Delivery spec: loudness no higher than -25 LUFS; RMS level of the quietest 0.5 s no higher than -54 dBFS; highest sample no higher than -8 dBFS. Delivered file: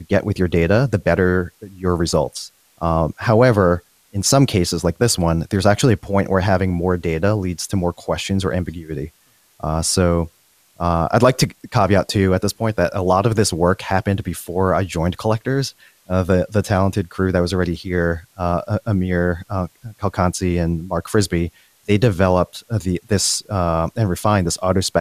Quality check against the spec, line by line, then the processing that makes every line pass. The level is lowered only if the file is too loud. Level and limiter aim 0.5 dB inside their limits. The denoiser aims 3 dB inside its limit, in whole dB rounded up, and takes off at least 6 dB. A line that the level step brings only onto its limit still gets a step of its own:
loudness -19.0 LUFS: fail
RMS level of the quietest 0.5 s -56 dBFS: pass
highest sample -2.5 dBFS: fail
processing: trim -6.5 dB

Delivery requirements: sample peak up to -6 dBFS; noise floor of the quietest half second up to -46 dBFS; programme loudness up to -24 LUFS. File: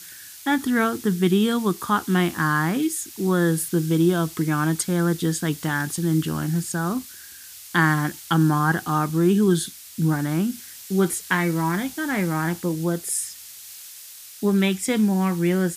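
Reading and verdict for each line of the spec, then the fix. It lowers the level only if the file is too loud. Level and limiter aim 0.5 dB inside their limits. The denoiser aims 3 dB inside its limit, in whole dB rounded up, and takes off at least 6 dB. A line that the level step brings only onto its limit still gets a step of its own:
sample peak -7.0 dBFS: pass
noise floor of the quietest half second -42 dBFS: fail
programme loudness -22.5 LUFS: fail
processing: noise reduction 6 dB, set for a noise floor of -42 dBFS; trim -2 dB

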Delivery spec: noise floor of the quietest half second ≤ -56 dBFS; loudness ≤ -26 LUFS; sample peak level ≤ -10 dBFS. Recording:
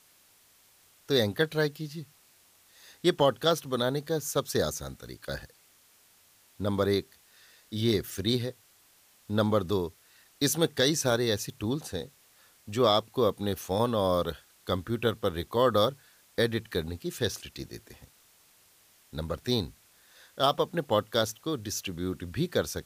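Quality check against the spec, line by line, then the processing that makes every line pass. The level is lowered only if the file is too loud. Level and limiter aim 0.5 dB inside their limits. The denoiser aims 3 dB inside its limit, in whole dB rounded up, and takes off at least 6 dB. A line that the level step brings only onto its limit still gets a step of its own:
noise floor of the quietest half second -62 dBFS: pass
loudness -29.0 LUFS: pass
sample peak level -11.5 dBFS: pass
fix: none needed

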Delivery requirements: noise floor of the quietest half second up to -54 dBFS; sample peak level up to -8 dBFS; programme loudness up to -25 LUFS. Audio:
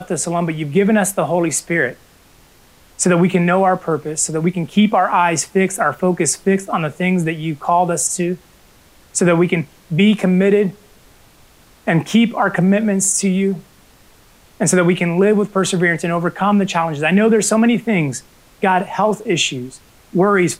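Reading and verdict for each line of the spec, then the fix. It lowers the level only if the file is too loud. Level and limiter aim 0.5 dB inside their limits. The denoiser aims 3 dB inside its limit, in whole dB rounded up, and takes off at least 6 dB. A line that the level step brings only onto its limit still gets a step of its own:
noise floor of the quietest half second -49 dBFS: fail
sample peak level -4.0 dBFS: fail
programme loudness -16.5 LUFS: fail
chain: trim -9 dB

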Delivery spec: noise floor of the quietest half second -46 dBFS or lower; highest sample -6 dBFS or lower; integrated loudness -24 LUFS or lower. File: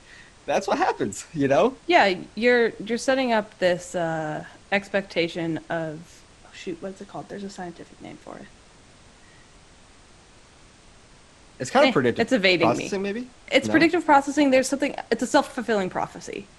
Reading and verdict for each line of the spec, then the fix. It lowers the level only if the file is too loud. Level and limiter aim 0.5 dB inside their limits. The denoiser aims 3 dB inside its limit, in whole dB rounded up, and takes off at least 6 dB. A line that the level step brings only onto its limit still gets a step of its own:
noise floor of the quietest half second -51 dBFS: pass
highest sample -4.5 dBFS: fail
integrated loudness -22.5 LUFS: fail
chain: trim -2 dB

